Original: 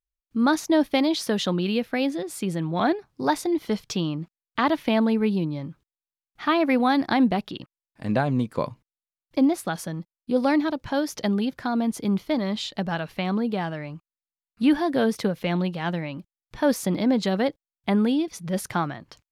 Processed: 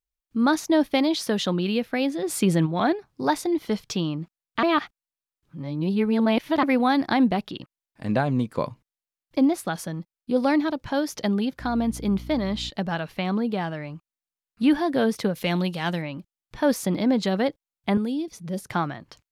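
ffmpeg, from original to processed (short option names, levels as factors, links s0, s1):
-filter_complex "[0:a]asplit=3[s0][s1][s2];[s0]afade=t=out:st=2.22:d=0.02[s3];[s1]acontrast=79,afade=t=in:st=2.22:d=0.02,afade=t=out:st=2.65:d=0.02[s4];[s2]afade=t=in:st=2.65:d=0.02[s5];[s3][s4][s5]amix=inputs=3:normalize=0,asettb=1/sr,asplit=3[s6][s7][s8];[s6]atrim=end=11.604[s9];[s7]atrim=start=11.6:end=12.7,asetpts=PTS-STARTPTS,afade=t=in:d=0.004:c=qsin,afade=t=out:st=1.096:d=0.004:c=qsin,aeval=exprs='val(0)+0.0141*(sin(2*PI*60*n/s)+sin(2*PI*2*60*n/s)/2+sin(2*PI*3*60*n/s)/3+sin(2*PI*4*60*n/s)/4+sin(2*PI*5*60*n/s)/5)':c=same[s10];[s8]atrim=start=12.696[s11];[s9][s10]acrossfade=d=0.004:c1=hsin:c2=qsin[s12];[s12][s11]acrossfade=d=0.004:c1=qsin:c2=hsin,asettb=1/sr,asplit=3[s13][s14][s15];[s13]atrim=end=15.354[s16];[s14]atrim=start=15.35:end=16.02,asetpts=PTS-STARTPTS,afade=t=in:d=0.004:c=qsin,afade=t=out:st=0.666:d=0.004:c=qsin,equalizer=f=11000:t=o:w=2.3:g=12[s17];[s15]atrim=start=16.016[s18];[s16][s17]acrossfade=d=0.004:c1=hsin:c2=qsin[s19];[s19][s18]acrossfade=d=0.004:c1=qsin:c2=hsin,asettb=1/sr,asplit=3[s20][s21][s22];[s20]atrim=end=17.974[s23];[s21]atrim=start=17.97:end=18.7,asetpts=PTS-STARTPTS,afade=t=in:d=0.004:c=qsin,afade=t=out:st=0.726:d=0.004:c=qsin,acrossover=split=140|600|4100[s24][s25][s26][s27];[s24]acompressor=threshold=0.00316:ratio=3[s28];[s25]acompressor=threshold=0.0501:ratio=3[s29];[s26]acompressor=threshold=0.00251:ratio=3[s30];[s27]acompressor=threshold=0.00562:ratio=3[s31];[s28][s29][s30][s31]amix=inputs=4:normalize=0[s32];[s22]atrim=start=18.696[s33];[s23][s32]acrossfade=d=0.004:c1=hsin:c2=qsin[s34];[s34][s33]acrossfade=d=0.004:c1=qsin:c2=hsin,asplit=3[s35][s36][s37];[s35]atrim=end=4.632[s38];[s36]atrim=start=4.628:end=6.632,asetpts=PTS-STARTPTS,areverse[s39];[s37]atrim=start=6.628[s40];[s38][s39]acrossfade=d=0.004:c1=hsin:c2=hsin[s41];[s41][s40]acrossfade=d=0.004:c1=hsin:c2=hsin"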